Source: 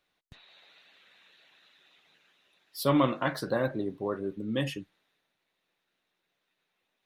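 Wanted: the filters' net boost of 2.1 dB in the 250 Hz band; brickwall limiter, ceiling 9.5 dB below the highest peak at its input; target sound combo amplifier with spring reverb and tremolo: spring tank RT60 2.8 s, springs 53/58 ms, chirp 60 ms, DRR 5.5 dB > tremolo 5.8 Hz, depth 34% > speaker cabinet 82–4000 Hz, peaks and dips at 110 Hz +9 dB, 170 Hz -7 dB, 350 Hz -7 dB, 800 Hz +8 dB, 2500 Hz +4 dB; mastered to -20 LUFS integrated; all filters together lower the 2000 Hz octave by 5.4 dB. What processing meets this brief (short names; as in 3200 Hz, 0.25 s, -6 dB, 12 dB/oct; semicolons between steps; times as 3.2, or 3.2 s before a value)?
bell 250 Hz +5.5 dB; bell 2000 Hz -9 dB; limiter -18.5 dBFS; spring tank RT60 2.8 s, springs 53/58 ms, chirp 60 ms, DRR 5.5 dB; tremolo 5.8 Hz, depth 34%; speaker cabinet 82–4000 Hz, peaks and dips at 110 Hz +9 dB, 170 Hz -7 dB, 350 Hz -7 dB, 800 Hz +8 dB, 2500 Hz +4 dB; gain +13 dB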